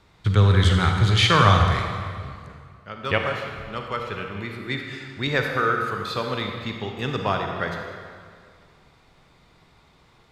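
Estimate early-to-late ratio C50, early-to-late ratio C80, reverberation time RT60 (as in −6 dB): 3.0 dB, 4.5 dB, 2.1 s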